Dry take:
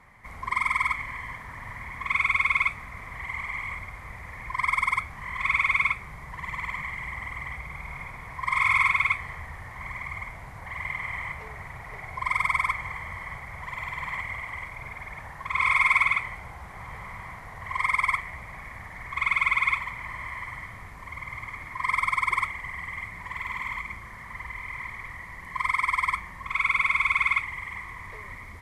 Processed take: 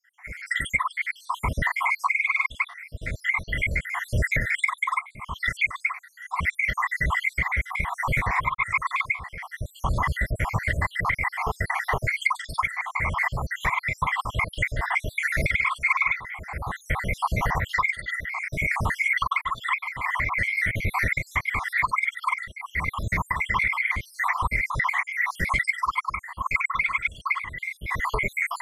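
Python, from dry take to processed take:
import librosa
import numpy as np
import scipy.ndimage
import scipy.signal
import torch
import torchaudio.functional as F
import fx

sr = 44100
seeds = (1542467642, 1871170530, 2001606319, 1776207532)

y = fx.spec_dropout(x, sr, seeds[0], share_pct=71)
y = fx.recorder_agc(y, sr, target_db=-15.0, rise_db_per_s=28.0, max_gain_db=30)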